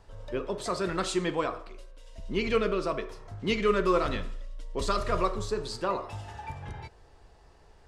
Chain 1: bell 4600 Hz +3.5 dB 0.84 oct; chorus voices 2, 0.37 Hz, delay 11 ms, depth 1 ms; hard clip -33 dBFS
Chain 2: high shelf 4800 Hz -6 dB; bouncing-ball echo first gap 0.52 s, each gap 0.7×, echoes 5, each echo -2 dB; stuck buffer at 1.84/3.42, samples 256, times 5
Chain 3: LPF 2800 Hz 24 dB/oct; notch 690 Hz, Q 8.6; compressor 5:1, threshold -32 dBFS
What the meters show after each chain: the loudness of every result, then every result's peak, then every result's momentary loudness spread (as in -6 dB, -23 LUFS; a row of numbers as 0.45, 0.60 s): -38.0, -27.5, -38.0 LUFS; -33.0, -9.5, -22.0 dBFS; 11, 10, 10 LU